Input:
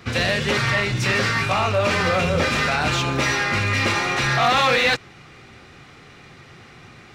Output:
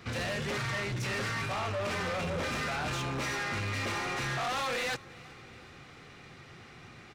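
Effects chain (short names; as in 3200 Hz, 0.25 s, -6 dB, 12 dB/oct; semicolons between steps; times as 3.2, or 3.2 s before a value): dynamic EQ 3700 Hz, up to -4 dB, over -33 dBFS, Q 0.82; soft clip -24.5 dBFS, distortion -8 dB; on a send: feedback echo 0.372 s, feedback 58%, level -23.5 dB; on the sum: gain -6 dB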